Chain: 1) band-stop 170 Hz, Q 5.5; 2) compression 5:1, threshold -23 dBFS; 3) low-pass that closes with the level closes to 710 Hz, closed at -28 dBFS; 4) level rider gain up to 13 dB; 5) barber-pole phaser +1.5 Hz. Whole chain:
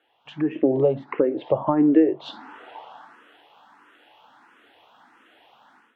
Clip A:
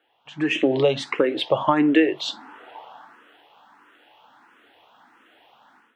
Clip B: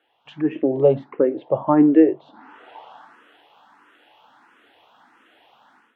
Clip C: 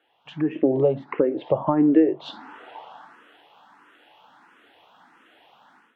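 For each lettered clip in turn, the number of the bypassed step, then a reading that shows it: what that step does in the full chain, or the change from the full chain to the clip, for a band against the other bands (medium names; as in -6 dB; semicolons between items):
3, 4 kHz band +14.5 dB; 2, mean gain reduction 2.5 dB; 1, momentary loudness spread change +4 LU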